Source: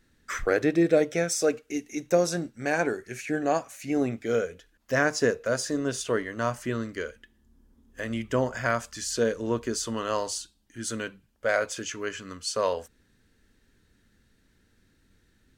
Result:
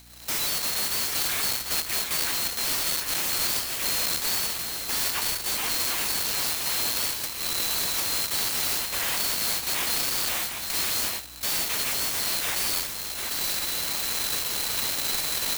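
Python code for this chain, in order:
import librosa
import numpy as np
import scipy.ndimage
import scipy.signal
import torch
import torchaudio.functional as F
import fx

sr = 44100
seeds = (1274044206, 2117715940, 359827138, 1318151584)

p1 = fx.band_swap(x, sr, width_hz=4000)
p2 = fx.recorder_agc(p1, sr, target_db=-14.5, rise_db_per_s=37.0, max_gain_db=30)
p3 = scipy.signal.sosfilt(scipy.signal.butter(4, 700.0, 'highpass', fs=sr, output='sos'), p2)
p4 = fx.add_hum(p3, sr, base_hz=60, snr_db=33)
p5 = fx.high_shelf(p4, sr, hz=3800.0, db=10.0)
p6 = 10.0 ** (-31.0 / 20.0) * np.tanh(p5 / 10.0 ** (-31.0 / 20.0))
p7 = p6 + fx.echo_single(p6, sr, ms=747, db=-6.0, dry=0)
p8 = fx.clock_jitter(p7, sr, seeds[0], jitter_ms=0.05)
y = F.gain(torch.from_numpy(p8), 5.5).numpy()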